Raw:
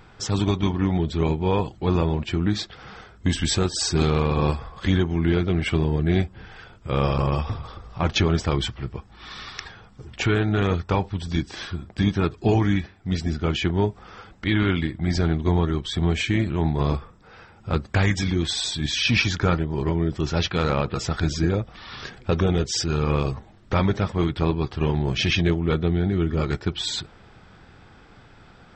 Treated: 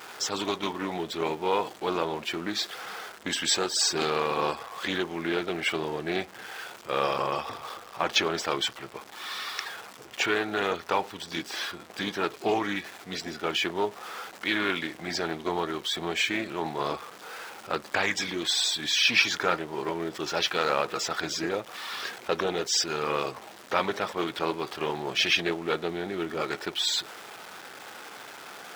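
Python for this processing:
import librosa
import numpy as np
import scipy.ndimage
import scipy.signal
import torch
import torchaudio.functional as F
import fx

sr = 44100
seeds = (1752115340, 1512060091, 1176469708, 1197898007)

y = x + 0.5 * 10.0 ** (-37.0 / 20.0) * np.sign(x)
y = scipy.signal.sosfilt(scipy.signal.butter(2, 470.0, 'highpass', fs=sr, output='sos'), y)
y = fx.doppler_dist(y, sr, depth_ms=0.11)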